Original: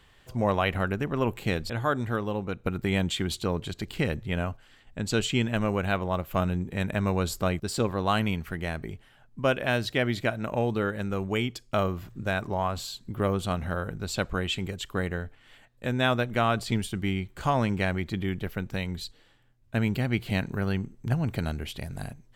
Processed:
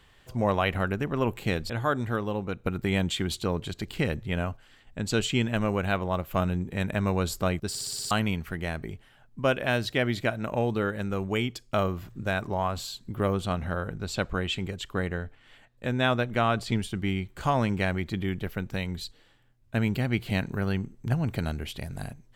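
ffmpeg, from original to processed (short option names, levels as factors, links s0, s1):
-filter_complex "[0:a]asettb=1/sr,asplit=3[s0][s1][s2];[s0]atrim=end=13.394[s3];[s1]atrim=start=13.39:end=17.09,asetpts=PTS-STARTPTS,afade=t=in:d=0.004:c=qsin,afade=t=out:st=3.696:d=0.004:c=qsin,highshelf=f=9000:g=-7.5[s4];[s2]atrim=start=17.086[s5];[s3][s4]acrossfade=d=0.004:c1=hsin:c2=qsin[s6];[s6][s5]acrossfade=d=0.004:c1=qsin:c2=hsin,asplit=8[s7][s8][s9][s10][s11][s12][s13][s14];[s7]atrim=end=7.752[s15];[s8]atrim=start=7.688:end=7.752[s16];[s9]atrim=start=7.688:end=7.752[s17];[s10]atrim=start=7.688:end=7.752[s18];[s11]atrim=start=7.688:end=7.752[s19];[s12]atrim=start=7.688:end=7.752[s20];[s13]atrim=start=7.688:end=7.752[s21];[s14]atrim=start=8.108[s22];[s15][s16]acrossfade=d=0.004:c1=hsin:c2=hsin[s23];[s23][s17]acrossfade=d=0.004:c1=hsin:c2=hsin[s24];[s24][s18]acrossfade=d=0.004:c1=hsin:c2=hsin[s25];[s25][s19]acrossfade=d=0.004:c1=hsin:c2=hsin[s26];[s26][s20]acrossfade=d=0.004:c1=hsin:c2=hsin[s27];[s27][s21]acrossfade=d=0.004:c1=hsin:c2=hsin[s28];[s28][s22]acrossfade=d=0.004:c1=hsin:c2=hsin"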